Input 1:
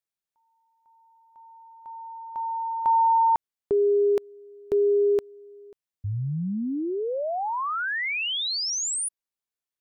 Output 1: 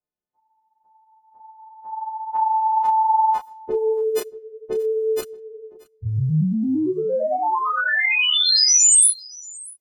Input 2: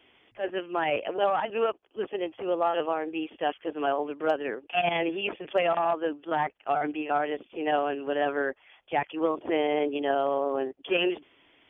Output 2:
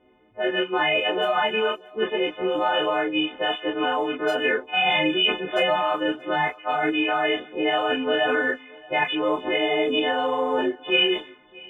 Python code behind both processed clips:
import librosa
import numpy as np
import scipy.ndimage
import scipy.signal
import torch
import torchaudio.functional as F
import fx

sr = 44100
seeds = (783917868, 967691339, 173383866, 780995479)

p1 = fx.freq_snap(x, sr, grid_st=3)
p2 = fx.env_lowpass(p1, sr, base_hz=520.0, full_db=-22.5)
p3 = fx.over_compress(p2, sr, threshold_db=-30.0, ratio=-0.5)
p4 = p2 + (p3 * 10.0 ** (0.0 / 20.0))
p5 = fx.high_shelf(p4, sr, hz=2800.0, db=7.5)
p6 = fx.chorus_voices(p5, sr, voices=6, hz=1.5, base_ms=29, depth_ms=3.0, mix_pct=35)
p7 = p6 + fx.echo_single(p6, sr, ms=629, db=-23.5, dry=0)
y = p7 * 10.0 ** (2.5 / 20.0)